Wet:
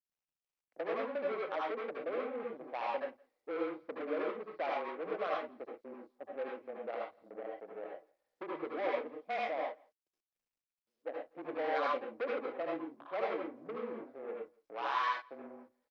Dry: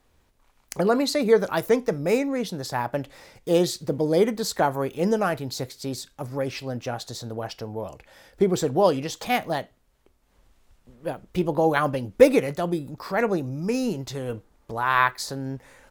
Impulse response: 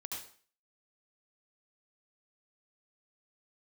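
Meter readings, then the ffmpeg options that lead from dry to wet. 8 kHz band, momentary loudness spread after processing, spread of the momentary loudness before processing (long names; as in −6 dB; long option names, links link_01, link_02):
below −35 dB, 12 LU, 14 LU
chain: -filter_complex "[0:a]afwtdn=0.0447,acompressor=threshold=-22dB:ratio=2.5,volume=23dB,asoftclip=hard,volume=-23dB,afreqshift=-22,adynamicsmooth=sensitivity=1.5:basefreq=550,highpass=frequency=380:width=0.5412,highpass=frequency=380:width=1.3066,equalizer=frequency=390:width_type=q:width=4:gain=-10,equalizer=frequency=890:width_type=q:width=4:gain=-6,equalizer=frequency=2200:width_type=q:width=4:gain=6,lowpass=frequency=5000:width=0.5412,lowpass=frequency=5000:width=1.3066,asplit=2[link_01][link_02];[link_02]adelay=169.1,volume=-27dB,highshelf=frequency=4000:gain=-3.8[link_03];[link_01][link_03]amix=inputs=2:normalize=0[link_04];[1:a]atrim=start_sample=2205,atrim=end_sample=6174[link_05];[link_04][link_05]afir=irnorm=-1:irlink=0" -ar 44100 -c:a sbc -b:a 128k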